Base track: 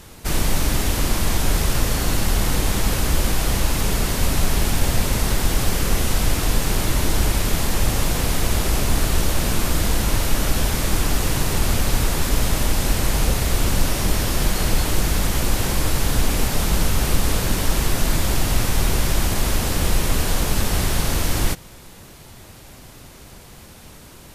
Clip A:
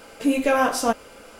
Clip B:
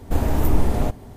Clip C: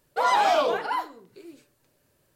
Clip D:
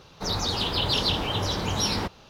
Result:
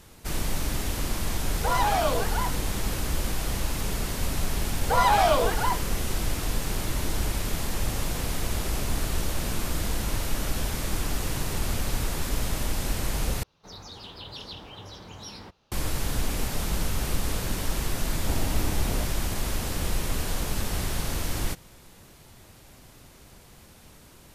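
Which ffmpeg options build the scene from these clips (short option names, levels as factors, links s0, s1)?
-filter_complex "[3:a]asplit=2[s0][s1];[0:a]volume=0.376,asplit=2[s2][s3];[s2]atrim=end=13.434[s4];[4:a]atrim=end=2.29,asetpts=PTS-STARTPTS,volume=0.158[s5];[s3]atrim=start=15.716[s6];[s0]atrim=end=2.35,asetpts=PTS-STARTPTS,volume=0.631,afade=t=in:d=0.004:c=hsin,afade=t=out:st=2.346:d=0.004:c=hsin,adelay=1470[s7];[s1]atrim=end=2.35,asetpts=PTS-STARTPTS,afade=t=in:d=0.004:c=hsin,afade=t=out:st=2.346:d=0.004:c=hsin,adelay=208593S[s8];[2:a]atrim=end=1.16,asetpts=PTS-STARTPTS,volume=0.299,afade=t=in:d=0.004:c=hsin,afade=t=out:st=1.156:d=0.004:c=hsin,adelay=18140[s9];[s4][s5]acrossfade=d=0.004:c1=hsin:c2=hsin[s10];[s10][s6]acrossfade=d=0.004:c1=hsin:c2=hsin[s11];[s11][s7][s8][s9]amix=inputs=4:normalize=0"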